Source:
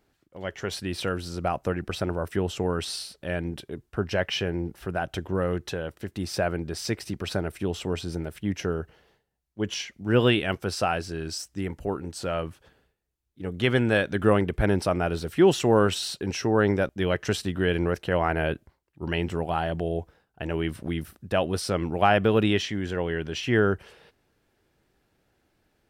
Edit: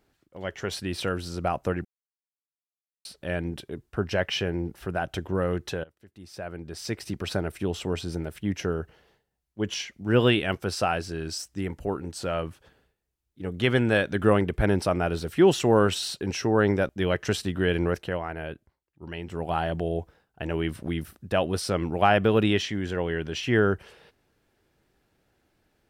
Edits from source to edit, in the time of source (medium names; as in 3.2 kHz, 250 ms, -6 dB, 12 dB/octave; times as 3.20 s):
1.85–3.05 s: mute
5.84–7.12 s: fade in quadratic, from -20.5 dB
17.96–19.52 s: dip -9 dB, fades 0.26 s